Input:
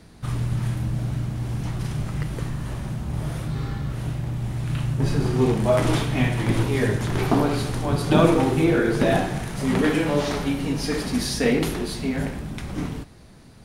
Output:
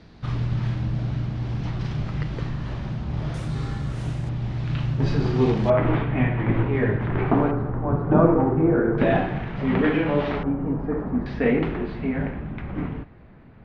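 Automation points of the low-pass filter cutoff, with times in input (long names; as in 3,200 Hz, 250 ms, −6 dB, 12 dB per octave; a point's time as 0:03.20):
low-pass filter 24 dB per octave
4,900 Hz
from 0:03.34 8,500 Hz
from 0:04.29 5,000 Hz
from 0:05.70 2,300 Hz
from 0:07.51 1,400 Hz
from 0:08.98 2,900 Hz
from 0:10.43 1,300 Hz
from 0:11.26 2,400 Hz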